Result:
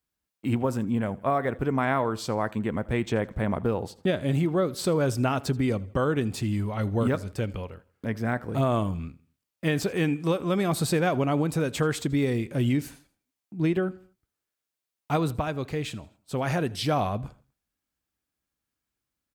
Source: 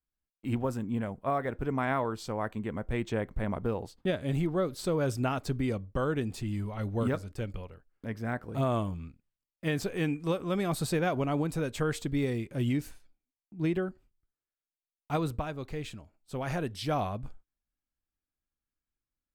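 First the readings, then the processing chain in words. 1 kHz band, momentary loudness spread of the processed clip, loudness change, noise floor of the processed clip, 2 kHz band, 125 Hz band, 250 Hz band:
+5.0 dB, 8 LU, +5.0 dB, under -85 dBFS, +5.0 dB, +5.0 dB, +5.5 dB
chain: HPF 71 Hz; compressor 1.5:1, threshold -34 dBFS, peak gain reduction 4 dB; feedback echo 81 ms, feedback 42%, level -22 dB; gain +8 dB

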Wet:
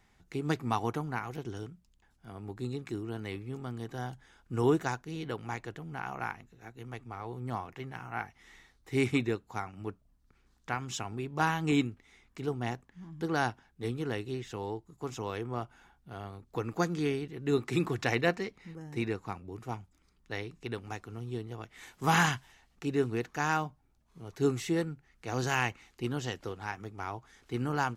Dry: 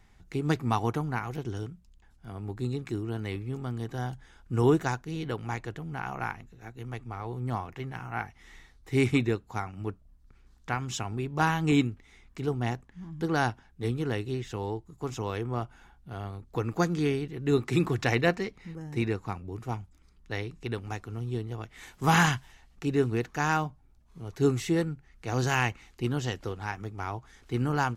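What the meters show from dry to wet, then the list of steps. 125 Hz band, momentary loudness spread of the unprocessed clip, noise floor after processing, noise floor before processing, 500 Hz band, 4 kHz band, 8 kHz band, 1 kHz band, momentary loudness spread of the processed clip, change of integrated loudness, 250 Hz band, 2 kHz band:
-6.0 dB, 14 LU, -68 dBFS, -59 dBFS, -3.0 dB, -2.5 dB, -2.5 dB, -2.5 dB, 15 LU, -3.5 dB, -4.0 dB, -2.5 dB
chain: low shelf 97 Hz -10 dB; gain -2.5 dB

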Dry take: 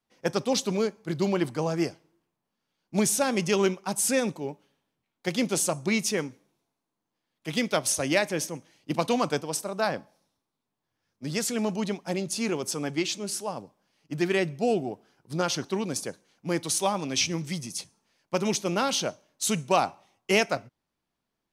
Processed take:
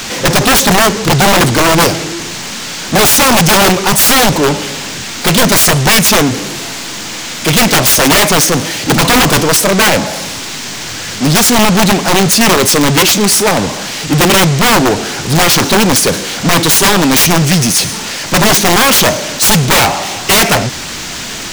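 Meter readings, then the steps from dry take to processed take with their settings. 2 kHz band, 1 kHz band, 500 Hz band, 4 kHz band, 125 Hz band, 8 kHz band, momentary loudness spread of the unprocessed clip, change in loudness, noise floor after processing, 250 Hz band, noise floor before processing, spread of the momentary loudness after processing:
+21.5 dB, +20.0 dB, +15.0 dB, +23.0 dB, +21.5 dB, +20.5 dB, 11 LU, +19.0 dB, -23 dBFS, +17.0 dB, -84 dBFS, 13 LU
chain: power-law curve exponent 0.35; wrapped overs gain 13.5 dB; band noise 1300–7500 Hz -33 dBFS; gain +8.5 dB

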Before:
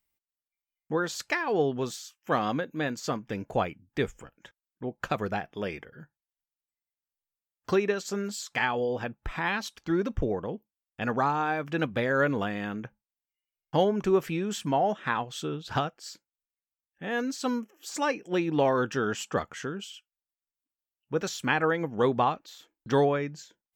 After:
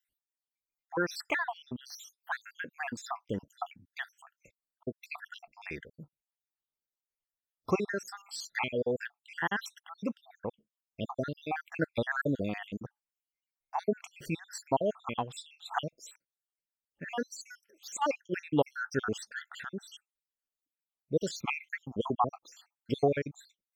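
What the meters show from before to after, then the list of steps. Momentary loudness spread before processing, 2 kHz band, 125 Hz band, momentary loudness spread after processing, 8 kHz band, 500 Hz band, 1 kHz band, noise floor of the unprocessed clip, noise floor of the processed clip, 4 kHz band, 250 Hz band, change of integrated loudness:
12 LU, -4.5 dB, -6.5 dB, 15 LU, -5.0 dB, -7.0 dB, -6.5 dB, under -85 dBFS, under -85 dBFS, -6.0 dB, -6.5 dB, -6.0 dB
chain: random spectral dropouts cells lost 70%

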